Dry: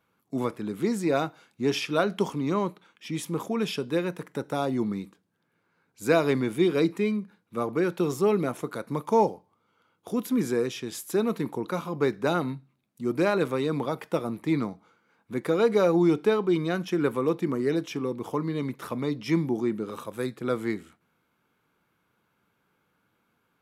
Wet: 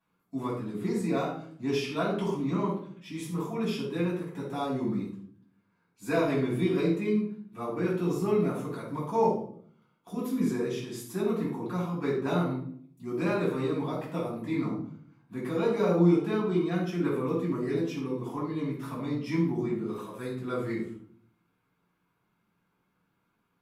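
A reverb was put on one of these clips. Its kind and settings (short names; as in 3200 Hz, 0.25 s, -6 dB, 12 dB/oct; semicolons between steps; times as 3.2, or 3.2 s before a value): shoebox room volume 720 m³, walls furnished, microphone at 8.9 m; gain -15 dB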